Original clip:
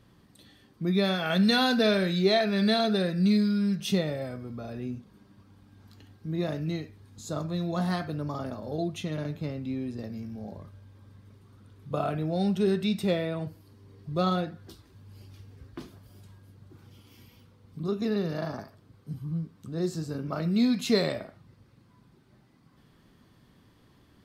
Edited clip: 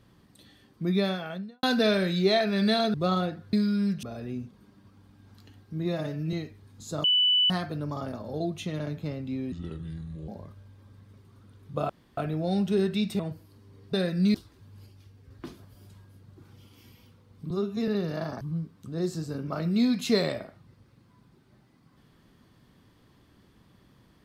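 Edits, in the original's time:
0:00.90–0:01.63: fade out and dull
0:02.94–0:03.35: swap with 0:14.09–0:14.68
0:03.85–0:04.56: remove
0:06.41–0:06.71: time-stretch 1.5×
0:07.42–0:07.88: beep over 2,980 Hz −19 dBFS
0:09.90–0:10.45: play speed 72%
0:12.06: splice in room tone 0.28 s
0:13.08–0:13.35: remove
0:15.20–0:15.64: clip gain −4.5 dB
0:17.84–0:18.09: time-stretch 1.5×
0:18.62–0:19.21: remove

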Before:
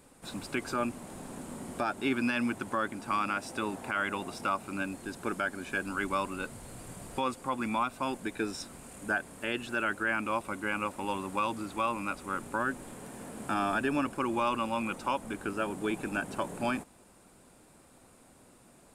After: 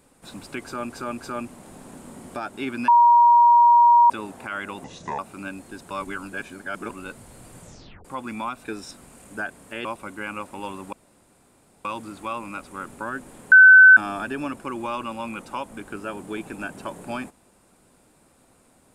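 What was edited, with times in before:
0:00.62–0:00.90: repeat, 3 plays
0:02.32–0:03.54: beep over 950 Hz −10.5 dBFS
0:04.28–0:04.53: play speed 72%
0:05.25–0:06.24: reverse
0:06.95: tape stop 0.44 s
0:07.99–0:08.36: remove
0:09.56–0:10.30: remove
0:11.38: splice in room tone 0.92 s
0:13.05–0:13.50: beep over 1,520 Hz −6 dBFS

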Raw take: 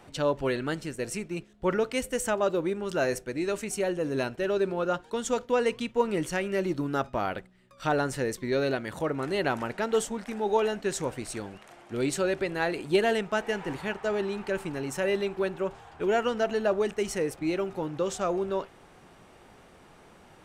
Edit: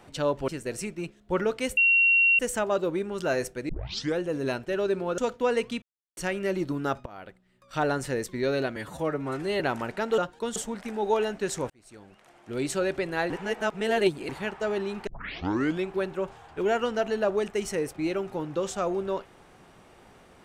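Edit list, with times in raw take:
0:00.48–0:00.81: remove
0:02.10: insert tone 2,740 Hz −17 dBFS 0.62 s
0:03.40: tape start 0.51 s
0:04.89–0:05.27: move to 0:09.99
0:05.91–0:06.26: silence
0:07.15–0:07.92: fade in, from −21 dB
0:08.85–0:09.41: time-stretch 1.5×
0:11.13–0:12.23: fade in
0:12.73–0:13.72: reverse
0:14.50: tape start 0.80 s

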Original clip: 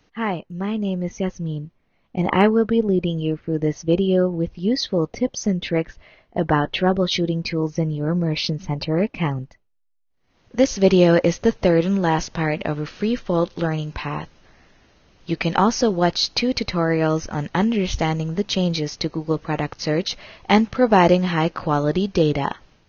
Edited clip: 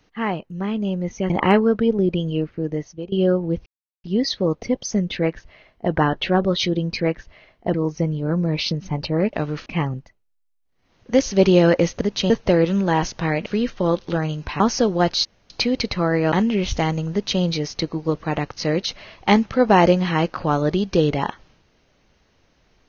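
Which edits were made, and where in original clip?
0:01.30–0:02.20: remove
0:03.38–0:04.02: fade out, to −22.5 dB
0:04.56: splice in silence 0.38 s
0:05.70–0:06.44: duplicate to 0:07.52
0:12.62–0:12.95: move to 0:09.11
0:14.09–0:15.62: remove
0:16.27: splice in room tone 0.25 s
0:17.09–0:17.54: remove
0:18.34–0:18.63: duplicate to 0:11.46

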